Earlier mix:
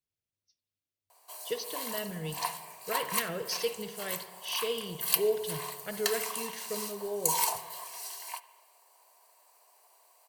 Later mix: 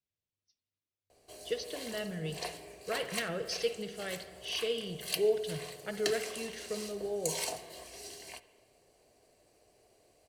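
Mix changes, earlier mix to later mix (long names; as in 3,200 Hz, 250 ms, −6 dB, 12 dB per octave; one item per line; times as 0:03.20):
background: remove high-pass with resonance 970 Hz, resonance Q 8.8
master: add high-frequency loss of the air 58 metres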